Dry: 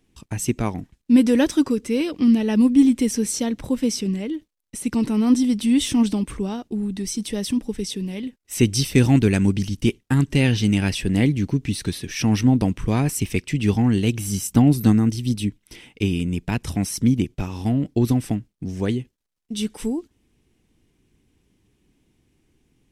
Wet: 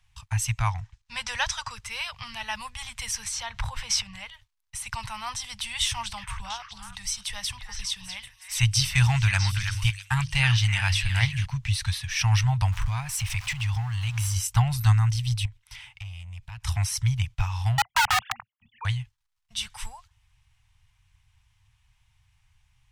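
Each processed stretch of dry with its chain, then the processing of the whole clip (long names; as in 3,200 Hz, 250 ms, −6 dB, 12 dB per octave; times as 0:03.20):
0:00.70–0:01.76: low-pass filter 8,200 Hz + parametric band 6,100 Hz +4 dB 0.76 octaves
0:03.24–0:04.15: low-pass filter 4,000 Hz 6 dB per octave + transient designer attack −1 dB, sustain +8 dB
0:05.85–0:11.46: mains-hum notches 50/100/150 Hz + echo through a band-pass that steps 325 ms, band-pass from 1,600 Hz, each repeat 1.4 octaves, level −4 dB
0:12.72–0:14.36: converter with a step at zero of −33 dBFS + downward compressor 3 to 1, threshold −24 dBFS
0:15.45–0:16.63: notch filter 510 Hz, Q 5.3 + downward compressor 12 to 1, threshold −31 dBFS + tube saturation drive 31 dB, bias 0.35
0:17.78–0:18.85: three sine waves on the formant tracks + wrap-around overflow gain 17 dB
whole clip: Chebyshev band-stop filter 110–900 Hz, order 3; high-shelf EQ 8,100 Hz −11 dB; level +4 dB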